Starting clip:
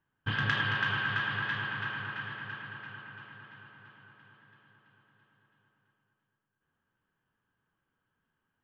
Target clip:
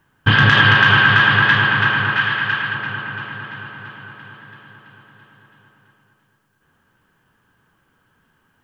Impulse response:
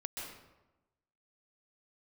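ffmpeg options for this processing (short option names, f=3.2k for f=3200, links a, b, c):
-filter_complex "[0:a]asettb=1/sr,asplit=3[a][b][c];[a]atrim=end=2.174[d];[b]atrim=start=2.17:end=2.75,asetpts=PTS-STARTPTS,afade=t=in:d=0.004:c=qsin,afade=t=out:st=0.576:d=0.004:c=qsin,tiltshelf=f=970:g=-4[e];[c]atrim=start=2.746[f];[d][e]acrossfade=d=0.004:c1=hsin:c2=qsin[g];[g][f]acrossfade=d=0.004:c1=qsin:c2=hsin,alimiter=level_in=20.5dB:limit=-1dB:release=50:level=0:latency=1,volume=-1dB"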